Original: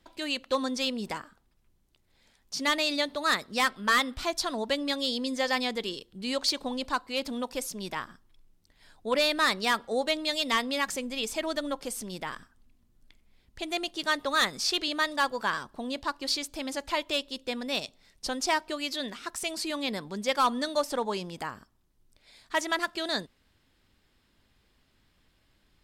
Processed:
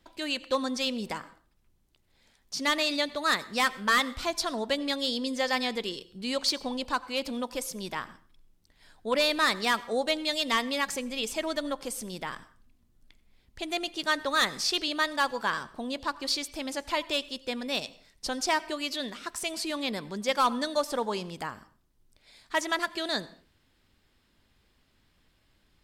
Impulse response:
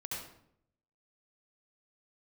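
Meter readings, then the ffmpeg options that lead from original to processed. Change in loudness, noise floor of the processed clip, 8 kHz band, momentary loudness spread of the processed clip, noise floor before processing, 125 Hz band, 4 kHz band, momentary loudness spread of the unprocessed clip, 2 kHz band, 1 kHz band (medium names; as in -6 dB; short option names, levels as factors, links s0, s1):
0.0 dB, -69 dBFS, 0.0 dB, 10 LU, -69 dBFS, 0.0 dB, 0.0 dB, 10 LU, 0.0 dB, 0.0 dB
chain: -filter_complex "[0:a]asplit=2[s0][s1];[1:a]atrim=start_sample=2205,afade=t=out:st=0.29:d=0.01,atrim=end_sample=13230,adelay=13[s2];[s1][s2]afir=irnorm=-1:irlink=0,volume=0.119[s3];[s0][s3]amix=inputs=2:normalize=0"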